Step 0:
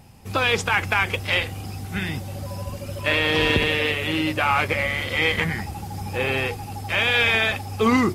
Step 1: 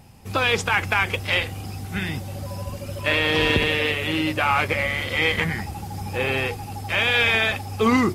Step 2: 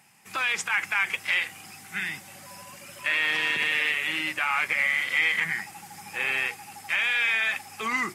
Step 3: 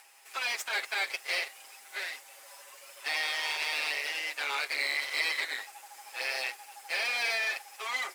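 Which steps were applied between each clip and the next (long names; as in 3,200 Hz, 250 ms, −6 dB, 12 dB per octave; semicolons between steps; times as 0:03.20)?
no processing that can be heard
high-pass filter 190 Hz 24 dB per octave; brickwall limiter −12.5 dBFS, peak gain reduction 6.5 dB; octave-band graphic EQ 250/500/2,000/4,000/8,000 Hz −10/−11/+8/−4/+6 dB; level −4.5 dB
lower of the sound and its delayed copy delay 7.4 ms; high-pass filter 460 Hz 24 dB per octave; upward compression, threshold −46 dBFS; level −4 dB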